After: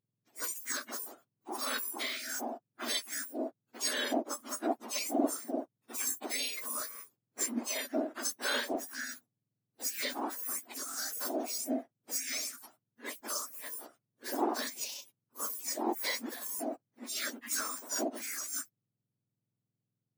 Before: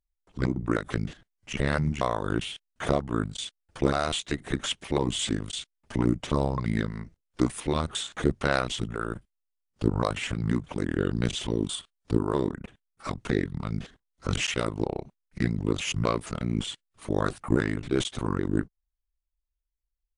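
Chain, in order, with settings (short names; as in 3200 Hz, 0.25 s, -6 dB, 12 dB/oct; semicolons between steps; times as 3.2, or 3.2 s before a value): spectrum mirrored in octaves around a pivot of 1500 Hz; 8.61–9.09 Doppler distortion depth 0.13 ms; gain -3.5 dB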